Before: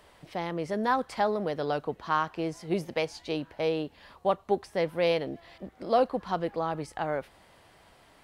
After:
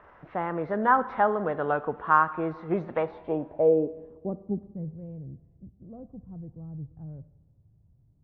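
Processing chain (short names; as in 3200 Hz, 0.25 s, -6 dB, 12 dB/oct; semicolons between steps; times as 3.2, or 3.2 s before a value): nonlinear frequency compression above 2200 Hz 1.5:1; low-pass sweep 1400 Hz -> 120 Hz, 2.91–4.97; Schroeder reverb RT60 1.2 s, combs from 25 ms, DRR 15 dB; gain +1 dB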